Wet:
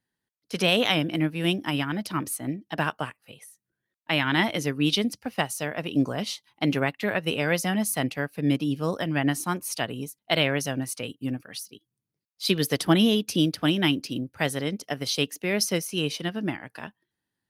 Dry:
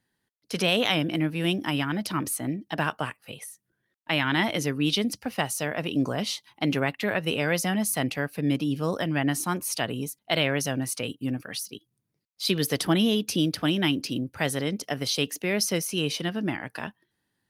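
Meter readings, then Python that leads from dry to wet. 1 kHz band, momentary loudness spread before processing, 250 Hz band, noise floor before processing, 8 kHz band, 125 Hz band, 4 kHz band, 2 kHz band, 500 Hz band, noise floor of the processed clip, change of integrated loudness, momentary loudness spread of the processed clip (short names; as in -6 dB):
+0.5 dB, 10 LU, +1.0 dB, -79 dBFS, -1.5 dB, +0.5 dB, +0.5 dB, +0.5 dB, +0.5 dB, under -85 dBFS, +0.5 dB, 11 LU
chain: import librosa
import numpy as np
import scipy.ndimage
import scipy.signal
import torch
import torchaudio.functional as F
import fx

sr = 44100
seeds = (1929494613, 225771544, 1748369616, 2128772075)

y = fx.upward_expand(x, sr, threshold_db=-40.0, expansion=1.5)
y = F.gain(torch.from_numpy(y), 3.5).numpy()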